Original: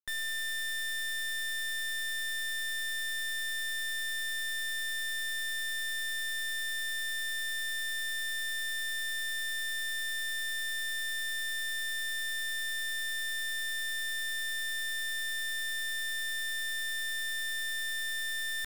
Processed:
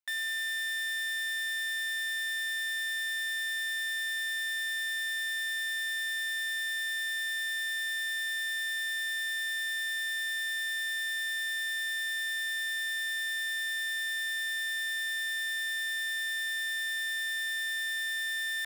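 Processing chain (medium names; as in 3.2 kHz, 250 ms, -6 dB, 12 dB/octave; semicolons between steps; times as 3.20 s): rippled Chebyshev high-pass 560 Hz, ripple 6 dB; trim +4 dB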